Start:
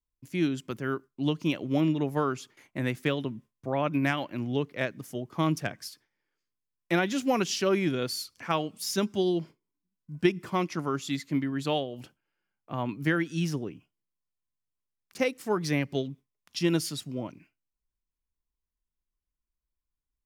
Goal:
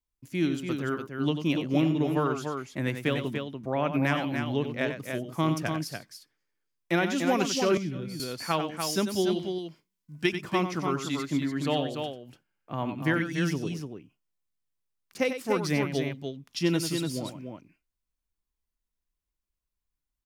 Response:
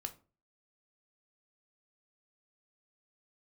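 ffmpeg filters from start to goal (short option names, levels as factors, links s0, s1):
-filter_complex "[0:a]asettb=1/sr,asplit=3[s0][s1][s2];[s0]atrim=end=9.294[s3];[s1]atrim=start=9.29:end=10.33,asetpts=PTS-STARTPTS,afade=t=in:d=0.004:c=qsin,afade=t=out:st=1.036:d=0.004:c=qsin,tiltshelf=f=1100:g=-5[s4];[s2]atrim=start=10.326[s5];[s3][s4]acrossfade=d=0.004:c1=hsin:c2=qsin[s6];[s6][s5]acrossfade=d=0.004:c1=qsin:c2=hsin,aecho=1:1:93.29|291.5:0.355|0.501,asettb=1/sr,asplit=3[s7][s8][s9];[s7]atrim=end=7.774[s10];[s8]atrim=start=7.77:end=8.2,asetpts=PTS-STARTPTS,afade=t=in:d=0.004:c=qsin,afade=t=out:st=0.426:d=0.004:c=qsin,acrossover=split=220[s11][s12];[s12]acompressor=threshold=0.00891:ratio=10[s13];[s11][s13]amix=inputs=2:normalize=0[s14];[s9]atrim=start=8.196[s15];[s10][s14]acrossfade=d=0.004:c1=hsin:c2=qsin[s16];[s16][s15]acrossfade=d=0.004:c1=qsin:c2=hsin"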